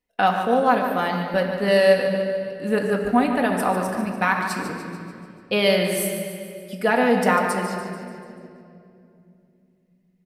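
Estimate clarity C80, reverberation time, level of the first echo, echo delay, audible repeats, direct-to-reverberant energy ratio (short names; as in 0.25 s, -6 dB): 4.0 dB, 2.5 s, -8.0 dB, 0.146 s, 6, 0.0 dB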